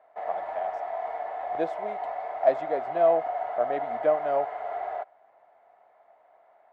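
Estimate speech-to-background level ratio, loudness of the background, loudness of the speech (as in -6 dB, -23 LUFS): 5.0 dB, -33.5 LUFS, -28.5 LUFS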